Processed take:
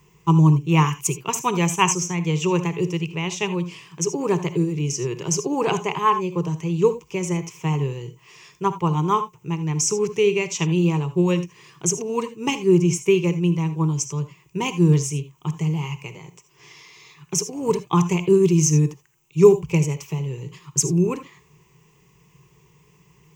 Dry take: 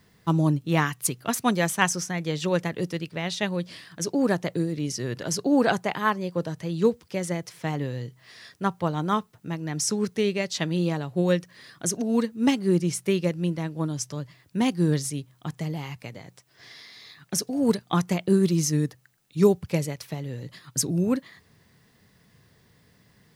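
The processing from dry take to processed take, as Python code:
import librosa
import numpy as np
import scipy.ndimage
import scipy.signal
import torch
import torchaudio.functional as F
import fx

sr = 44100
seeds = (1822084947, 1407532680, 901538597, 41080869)

y = fx.ripple_eq(x, sr, per_octave=0.73, db=17)
y = fx.rev_gated(y, sr, seeds[0], gate_ms=100, shape='rising', drr_db=11.5)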